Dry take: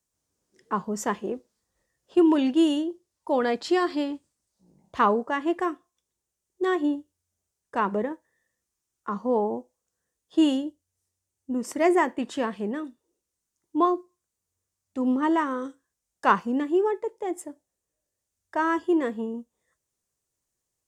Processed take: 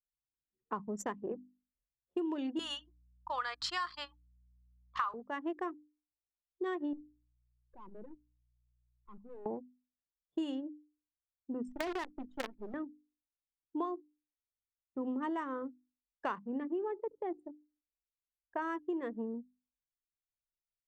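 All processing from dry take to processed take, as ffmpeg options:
-filter_complex "[0:a]asettb=1/sr,asplit=3[a][b][c];[a]atrim=end=2.594[d];[b]atrim=start=2.59:end=5.14,asetpts=PTS-STARTPTS,afade=t=in:d=0.004:c=qsin,afade=t=out:st=2.546:d=0.004:c=qsin,highpass=f=1.2k:t=q:w=4,equalizer=f=4.5k:t=o:w=1.4:g=9,aeval=exprs='val(0)+0.00316*(sin(2*PI*60*n/s)+sin(2*PI*2*60*n/s)/2+sin(2*PI*3*60*n/s)/3+sin(2*PI*4*60*n/s)/4+sin(2*PI*5*60*n/s)/5)':c=same[e];[c]atrim=start=5.136[f];[d][e]acrossfade=d=0.004:c1=hsin:c2=qsin[g];[g][f]acrossfade=d=0.004:c1=qsin:c2=hsin,asettb=1/sr,asplit=3[h][i][j];[h]atrim=end=6.934[k];[i]atrim=start=6.93:end=9.46,asetpts=PTS-STARTPTS,afade=t=in:d=0.004:c=qsin,afade=t=out:st=2.526:d=0.004:c=qsin,aeval=exprs='val(0)+0.002*(sin(2*PI*60*n/s)+sin(2*PI*2*60*n/s)/2+sin(2*PI*3*60*n/s)/3+sin(2*PI*4*60*n/s)/4+sin(2*PI*5*60*n/s)/5)':c=same,aeval=exprs='(tanh(79.4*val(0)+0.75)-tanh(0.75))/79.4':c=same[l];[j]atrim=start=9.456[m];[k][l]acrossfade=d=0.004:c1=hsin:c2=qsin[n];[n][m]acrossfade=d=0.004:c1=qsin:c2=hsin,asettb=1/sr,asplit=3[o][p][q];[o]atrim=end=11.684[r];[p]atrim=start=11.68:end=12.74,asetpts=PTS-STARTPTS,afade=t=in:d=0.004:c=qsin,afade=t=out:st=1.056:d=0.004:c=qsin,acrusher=bits=4:dc=4:mix=0:aa=0.000001,acrossover=split=160|5100[s][t][u];[s]acompressor=threshold=-44dB:ratio=4[v];[t]acompressor=threshold=-24dB:ratio=4[w];[u]acompressor=threshold=-46dB:ratio=4[x];[v][w][x]amix=inputs=3:normalize=0[y];[q]atrim=start=12.736[z];[r][y]acrossfade=d=0.004:c1=hsin:c2=qsin[aa];[aa][z]acrossfade=d=0.004:c1=qsin:c2=hsin,asettb=1/sr,asplit=3[ab][ac][ad];[ab]atrim=end=16.414[ae];[ac]atrim=start=16.41:end=18.62,asetpts=PTS-STARTPTS,afade=t=in:d=0.004:c=qsin,afade=t=out:st=2.206:d=0.004:c=qsin,bass=f=250:g=-1,treble=f=4k:g=-11,asplit=2[af][ag];[ag]adelay=75,lowpass=f=1.5k:p=1,volume=-18.5dB,asplit=2[ah][ai];[ai]adelay=75,lowpass=f=1.5k:p=1,volume=0.52,asplit=2[aj][ak];[ak]adelay=75,lowpass=f=1.5k:p=1,volume=0.52,asplit=2[al][am];[am]adelay=75,lowpass=f=1.5k:p=1,volume=0.52[an];[af][ah][aj][al][an]amix=inputs=5:normalize=0,atrim=end_sample=97461[ao];[ad]atrim=start=18.616[ap];[ae][ao]acrossfade=d=0.004:c1=hsin:c2=qsin[aq];[aq][ap]acrossfade=d=0.004:c1=qsin:c2=hsin,anlmdn=15.8,bandreject=f=50:t=h:w=6,bandreject=f=100:t=h:w=6,bandreject=f=150:t=h:w=6,bandreject=f=200:t=h:w=6,bandreject=f=250:t=h:w=6,bandreject=f=300:t=h:w=6,acompressor=threshold=-28dB:ratio=6,volume=-5.5dB"

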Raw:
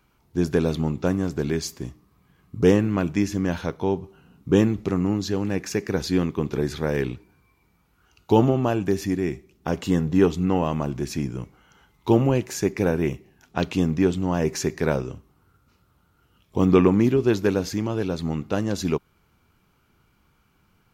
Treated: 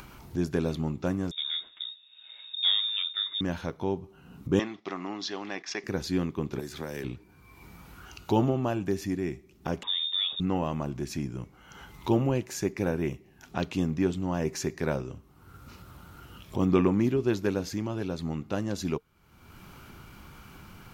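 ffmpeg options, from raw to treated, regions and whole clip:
-filter_complex "[0:a]asettb=1/sr,asplit=3[a][b][c];[a]atrim=end=1.314[d];[b]atrim=start=1.31:end=3.41,asetpts=PTS-STARTPTS,afade=t=in:d=0.004:c=qsin,afade=t=out:st=2.096:d=0.004:c=qsin,flanger=delay=4.4:depth=3.9:regen=-70:speed=1.8:shape=sinusoidal,lowshelf=f=120:g=8.5,lowpass=f=3.2k:t=q:w=0.5098,lowpass=f=3.2k:t=q:w=0.6013,lowpass=f=3.2k:t=q:w=0.9,lowpass=f=3.2k:t=q:w=2.563,afreqshift=-3800[e];[c]atrim=start=3.406[f];[d][e]acrossfade=d=0.004:c1=hsin:c2=qsin[g];[g][f]acrossfade=d=0.004:c1=qsin:c2=hsin,asettb=1/sr,asplit=3[h][i][j];[h]atrim=end=4.594[k];[i]atrim=start=4.59:end=5.84,asetpts=PTS-STARTPTS,afade=t=in:d=0.004:c=qsin,afade=t=out:st=1.246:d=0.004:c=qsin,agate=range=-8dB:threshold=-35dB:ratio=16:release=100:detection=peak,highpass=420,equalizer=f=490:t=q:w=4:g=-7,equalizer=f=720:t=q:w=4:g=5,equalizer=f=1.1k:t=q:w=4:g=5,equalizer=f=2k:t=q:w=4:g=6,equalizer=f=3.4k:t=q:w=4:g=9,equalizer=f=5.4k:t=q:w=4:g=6,lowpass=f=5.7k:w=0.5412,lowpass=f=5.7k:w=1.3066[l];[j]atrim=start=5.836[m];[k][l]acrossfade=d=0.004:c1=hsin:c2=qsin[n];[n][m]acrossfade=d=0.004:c1=qsin:c2=hsin,asettb=1/sr,asplit=3[o][p][q];[o]atrim=end=6.594[r];[p]atrim=start=6.59:end=7.04,asetpts=PTS-STARTPTS,afade=t=in:d=0.004:c=qsin,afade=t=out:st=0.446:d=0.004:c=qsin,highshelf=f=5.3k:g=10,acrossover=split=200|3400[s][t][u];[s]acompressor=threshold=-41dB:ratio=4[v];[t]acompressor=threshold=-29dB:ratio=4[w];[u]acompressor=threshold=-42dB:ratio=4[x];[v][w][x]amix=inputs=3:normalize=0,aeval=exprs='sgn(val(0))*max(abs(val(0))-0.00282,0)':c=same[y];[q]atrim=start=7.036[z];[r][y]acrossfade=d=0.004:c1=hsin:c2=qsin[aa];[aa][z]acrossfade=d=0.004:c1=qsin:c2=hsin,asettb=1/sr,asplit=3[ab][ac][ad];[ab]atrim=end=9.834[ae];[ac]atrim=start=9.83:end=10.4,asetpts=PTS-STARTPTS,afade=t=in:d=0.004:c=qsin,afade=t=out:st=0.566:d=0.004:c=qsin,acompressor=threshold=-18dB:ratio=6:attack=3.2:release=140:knee=1:detection=peak,lowpass=f=3.2k:t=q:w=0.5098,lowpass=f=3.2k:t=q:w=0.6013,lowpass=f=3.2k:t=q:w=0.9,lowpass=f=3.2k:t=q:w=2.563,afreqshift=-3800[af];[ad]atrim=start=10.396[ag];[ae][af]acrossfade=d=0.004:c1=hsin:c2=qsin[ah];[ah][ag]acrossfade=d=0.004:c1=qsin:c2=hsin,bandreject=f=450:w=14,acompressor=mode=upward:threshold=-24dB:ratio=2.5,volume=-6dB"

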